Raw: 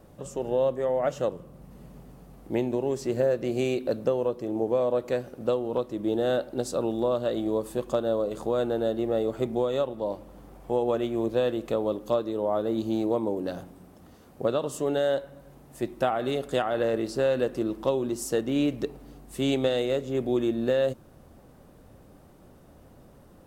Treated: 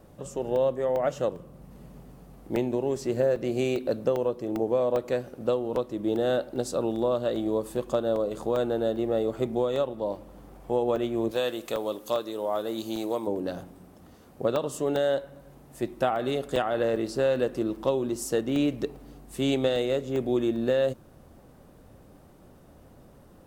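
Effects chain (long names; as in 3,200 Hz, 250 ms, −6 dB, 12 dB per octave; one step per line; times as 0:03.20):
0:11.31–0:13.27: spectral tilt +3 dB per octave
regular buffer underruns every 0.40 s, samples 64, zero, from 0:00.56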